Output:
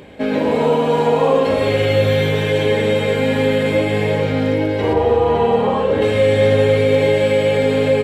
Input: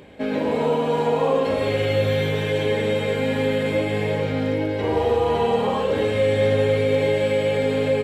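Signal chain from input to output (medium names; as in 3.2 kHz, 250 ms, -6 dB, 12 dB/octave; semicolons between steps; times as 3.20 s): 4.93–6.02 s: treble shelf 3.4 kHz -11 dB; trim +5.5 dB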